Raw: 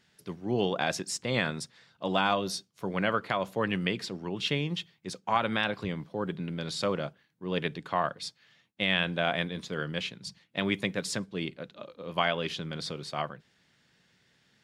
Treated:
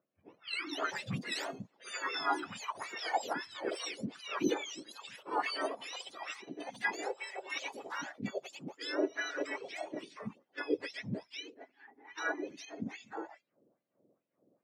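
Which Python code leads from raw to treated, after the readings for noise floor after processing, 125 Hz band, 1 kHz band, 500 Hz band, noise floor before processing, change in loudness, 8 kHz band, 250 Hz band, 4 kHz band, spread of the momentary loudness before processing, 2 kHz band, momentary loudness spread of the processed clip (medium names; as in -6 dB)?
-82 dBFS, -13.5 dB, -6.0 dB, -7.5 dB, -69 dBFS, -7.0 dB, -6.0 dB, -7.5 dB, -8.5 dB, 12 LU, -5.5 dB, 12 LU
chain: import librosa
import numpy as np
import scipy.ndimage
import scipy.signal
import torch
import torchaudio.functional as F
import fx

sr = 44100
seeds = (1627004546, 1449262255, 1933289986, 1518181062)

p1 = fx.octave_mirror(x, sr, pivot_hz=1000.0)
p2 = fx.env_lowpass(p1, sr, base_hz=1200.0, full_db=-29.0)
p3 = fx.level_steps(p2, sr, step_db=15)
p4 = p2 + (p3 * 10.0 ** (-2.0 / 20.0))
p5 = fx.filter_lfo_bandpass(p4, sr, shape='sine', hz=2.4, low_hz=380.0, high_hz=3700.0, q=1.9)
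p6 = fx.echo_pitch(p5, sr, ms=333, semitones=5, count=2, db_per_echo=-6.0)
y = p6 * 10.0 ** (-1.5 / 20.0)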